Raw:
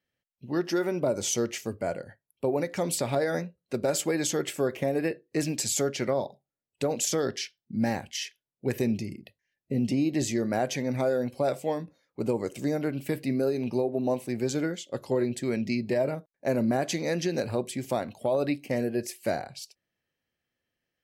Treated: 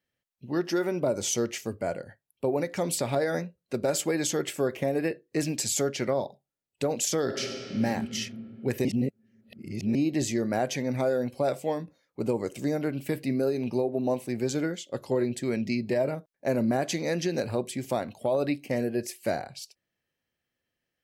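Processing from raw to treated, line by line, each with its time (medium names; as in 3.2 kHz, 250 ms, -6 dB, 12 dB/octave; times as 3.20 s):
7.22–7.83 s: reverb throw, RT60 2.9 s, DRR 1.5 dB
8.85–9.95 s: reverse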